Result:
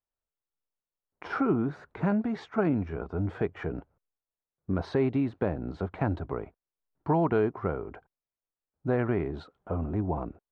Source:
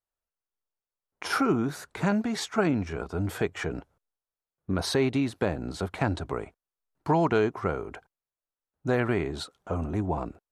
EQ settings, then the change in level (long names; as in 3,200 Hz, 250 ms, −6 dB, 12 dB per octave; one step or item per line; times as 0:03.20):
head-to-tape spacing loss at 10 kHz 29 dB
high-shelf EQ 4,100 Hz −9.5 dB
0.0 dB